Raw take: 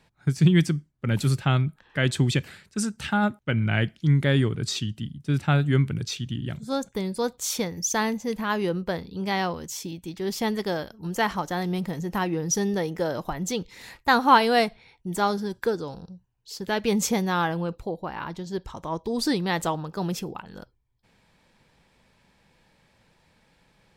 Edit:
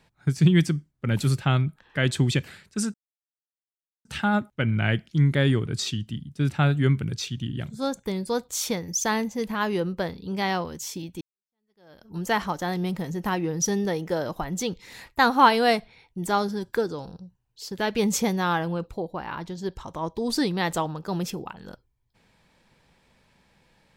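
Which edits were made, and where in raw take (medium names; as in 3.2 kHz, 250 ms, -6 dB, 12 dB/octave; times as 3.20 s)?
2.94 s: insert silence 1.11 s
10.10–10.97 s: fade in exponential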